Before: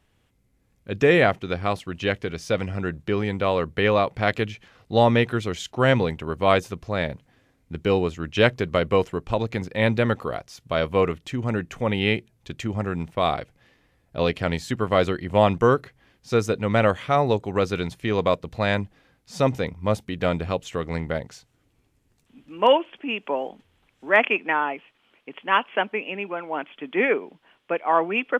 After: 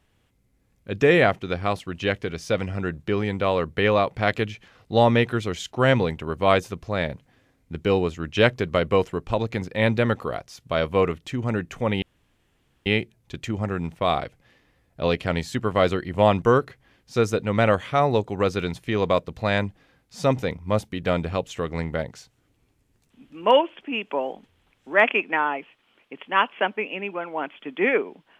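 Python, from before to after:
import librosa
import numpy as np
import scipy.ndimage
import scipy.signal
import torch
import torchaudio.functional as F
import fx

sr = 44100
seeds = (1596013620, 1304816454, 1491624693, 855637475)

y = fx.edit(x, sr, fx.insert_room_tone(at_s=12.02, length_s=0.84), tone=tone)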